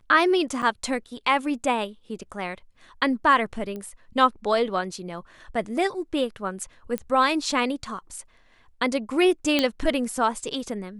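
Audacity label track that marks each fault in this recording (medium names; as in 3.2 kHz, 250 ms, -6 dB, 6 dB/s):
0.620000	0.630000	dropout 7.4 ms
3.760000	3.760000	pop -23 dBFS
6.980000	6.980000	pop -14 dBFS
9.590000	9.590000	pop -7 dBFS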